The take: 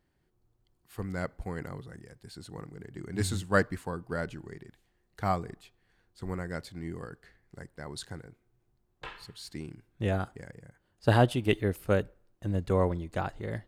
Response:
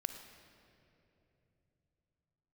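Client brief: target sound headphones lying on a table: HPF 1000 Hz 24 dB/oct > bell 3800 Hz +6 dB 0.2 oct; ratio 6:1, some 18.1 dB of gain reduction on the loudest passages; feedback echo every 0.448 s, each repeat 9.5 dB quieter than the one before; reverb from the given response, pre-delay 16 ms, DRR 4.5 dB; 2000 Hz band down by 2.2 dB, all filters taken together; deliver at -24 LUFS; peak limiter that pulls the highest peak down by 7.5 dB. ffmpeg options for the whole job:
-filter_complex "[0:a]equalizer=f=2k:t=o:g=-3,acompressor=threshold=-38dB:ratio=6,alimiter=level_in=8dB:limit=-24dB:level=0:latency=1,volume=-8dB,aecho=1:1:448|896|1344|1792:0.335|0.111|0.0365|0.012,asplit=2[a][b];[1:a]atrim=start_sample=2205,adelay=16[c];[b][c]afir=irnorm=-1:irlink=0,volume=-4dB[d];[a][d]amix=inputs=2:normalize=0,highpass=f=1k:w=0.5412,highpass=f=1k:w=1.3066,equalizer=f=3.8k:t=o:w=0.2:g=6,volume=27dB"

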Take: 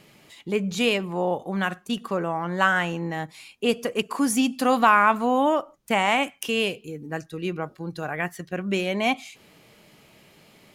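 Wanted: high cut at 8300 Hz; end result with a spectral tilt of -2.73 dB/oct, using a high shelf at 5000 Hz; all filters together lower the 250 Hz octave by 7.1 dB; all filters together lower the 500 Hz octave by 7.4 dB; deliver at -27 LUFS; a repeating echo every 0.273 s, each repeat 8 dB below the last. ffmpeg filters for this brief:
-af "lowpass=8.3k,equalizer=f=250:t=o:g=-7,equalizer=f=500:t=o:g=-7.5,highshelf=f=5k:g=7,aecho=1:1:273|546|819|1092|1365:0.398|0.159|0.0637|0.0255|0.0102,volume=-1dB"

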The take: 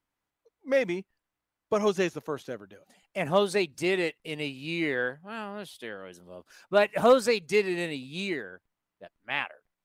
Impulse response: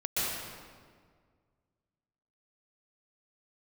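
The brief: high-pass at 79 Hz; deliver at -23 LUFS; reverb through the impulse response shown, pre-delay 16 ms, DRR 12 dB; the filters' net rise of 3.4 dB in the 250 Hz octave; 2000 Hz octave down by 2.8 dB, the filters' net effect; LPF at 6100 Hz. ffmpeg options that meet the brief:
-filter_complex "[0:a]highpass=79,lowpass=6.1k,equalizer=f=250:t=o:g=5,equalizer=f=2k:t=o:g=-3.5,asplit=2[a][b];[1:a]atrim=start_sample=2205,adelay=16[c];[b][c]afir=irnorm=-1:irlink=0,volume=-20.5dB[d];[a][d]amix=inputs=2:normalize=0,volume=4dB"

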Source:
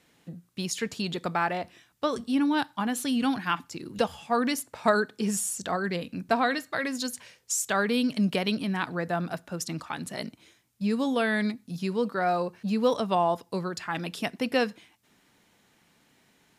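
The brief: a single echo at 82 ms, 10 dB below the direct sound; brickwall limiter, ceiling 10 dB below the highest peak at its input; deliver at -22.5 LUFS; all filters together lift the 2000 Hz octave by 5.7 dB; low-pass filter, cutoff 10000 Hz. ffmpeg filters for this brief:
-af "lowpass=10k,equalizer=f=2k:t=o:g=7.5,alimiter=limit=-16.5dB:level=0:latency=1,aecho=1:1:82:0.316,volume=6dB"

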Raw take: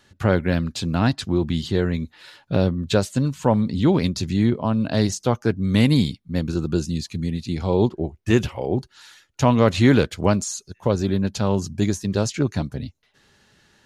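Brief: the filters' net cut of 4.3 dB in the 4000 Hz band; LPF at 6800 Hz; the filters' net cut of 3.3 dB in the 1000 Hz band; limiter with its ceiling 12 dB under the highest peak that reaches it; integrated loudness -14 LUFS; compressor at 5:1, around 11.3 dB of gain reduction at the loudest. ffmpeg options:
-af "lowpass=6.8k,equalizer=f=1k:t=o:g=-4,equalizer=f=4k:t=o:g=-4.5,acompressor=threshold=-25dB:ratio=5,volume=21.5dB,alimiter=limit=-3.5dB:level=0:latency=1"

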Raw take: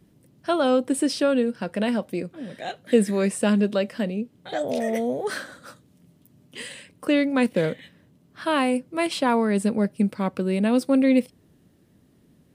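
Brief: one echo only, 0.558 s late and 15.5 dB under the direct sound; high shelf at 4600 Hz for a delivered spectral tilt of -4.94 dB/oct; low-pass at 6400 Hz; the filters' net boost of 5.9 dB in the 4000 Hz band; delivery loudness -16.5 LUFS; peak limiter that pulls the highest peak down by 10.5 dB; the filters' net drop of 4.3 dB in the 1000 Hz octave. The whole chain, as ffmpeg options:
-af "lowpass=6.4k,equalizer=f=1k:t=o:g=-6.5,equalizer=f=4k:t=o:g=7,highshelf=f=4.6k:g=3.5,alimiter=limit=-17.5dB:level=0:latency=1,aecho=1:1:558:0.168,volume=11dB"

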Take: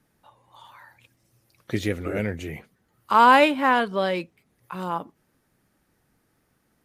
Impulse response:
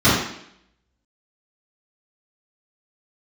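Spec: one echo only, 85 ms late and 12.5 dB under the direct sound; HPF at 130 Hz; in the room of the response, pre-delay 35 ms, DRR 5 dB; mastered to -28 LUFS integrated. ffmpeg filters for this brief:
-filter_complex "[0:a]highpass=130,aecho=1:1:85:0.237,asplit=2[a][b];[1:a]atrim=start_sample=2205,adelay=35[c];[b][c]afir=irnorm=-1:irlink=0,volume=-29dB[d];[a][d]amix=inputs=2:normalize=0,volume=-8.5dB"

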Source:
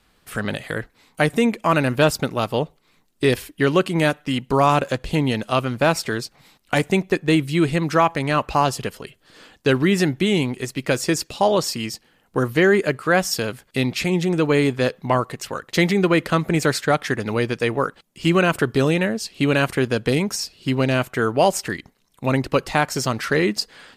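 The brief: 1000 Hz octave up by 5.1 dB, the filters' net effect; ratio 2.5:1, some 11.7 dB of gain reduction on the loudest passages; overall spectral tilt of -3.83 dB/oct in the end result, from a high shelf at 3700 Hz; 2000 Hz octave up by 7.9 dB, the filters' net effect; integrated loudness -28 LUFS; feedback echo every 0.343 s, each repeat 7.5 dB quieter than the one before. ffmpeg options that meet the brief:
-af "equalizer=f=1k:t=o:g=4,equalizer=f=2k:t=o:g=7,highshelf=f=3.7k:g=7,acompressor=threshold=-27dB:ratio=2.5,aecho=1:1:343|686|1029|1372|1715:0.422|0.177|0.0744|0.0312|0.0131,volume=-2dB"

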